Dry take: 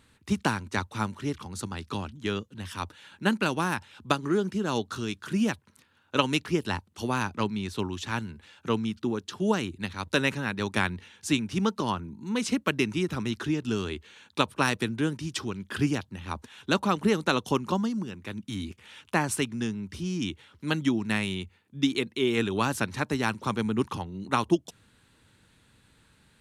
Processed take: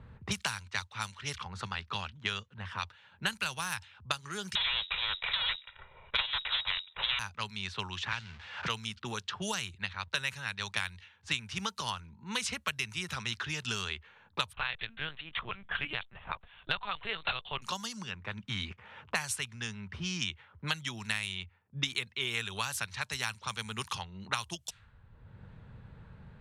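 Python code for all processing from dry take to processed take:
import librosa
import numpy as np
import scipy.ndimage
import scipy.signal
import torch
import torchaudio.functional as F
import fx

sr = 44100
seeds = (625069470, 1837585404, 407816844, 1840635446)

y = fx.chain(x, sr, fx.lower_of_two(delay_ms=2.1),
    fx.freq_invert(carrier_hz=3800),
    fx.spectral_comp(ratio=2.0), at=(4.55, 7.19))
y = fx.chain(y, sr, fx.crossing_spikes(level_db=-29.5),
    fx.air_absorb(metres=140.0),
    fx.band_squash(depth_pct=100), at=(8.12, 8.68))
y = fx.chain(y, sr, fx.highpass(hz=240.0, slope=12),
    fx.lpc_vocoder(seeds[0], excitation='pitch_kept', order=10), at=(14.53, 17.62))
y = fx.env_lowpass(y, sr, base_hz=380.0, full_db=-24.0)
y = fx.tone_stack(y, sr, knobs='10-0-10')
y = fx.band_squash(y, sr, depth_pct=100)
y = y * 10.0 ** (1.5 / 20.0)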